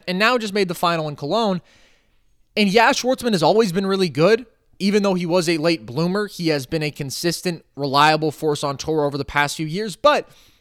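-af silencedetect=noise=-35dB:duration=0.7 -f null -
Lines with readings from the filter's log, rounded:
silence_start: 1.59
silence_end: 2.57 | silence_duration: 0.98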